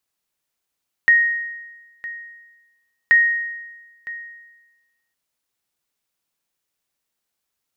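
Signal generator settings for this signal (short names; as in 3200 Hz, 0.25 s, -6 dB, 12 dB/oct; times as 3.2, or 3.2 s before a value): sonar ping 1870 Hz, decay 1.20 s, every 2.03 s, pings 2, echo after 0.96 s, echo -18 dB -7.5 dBFS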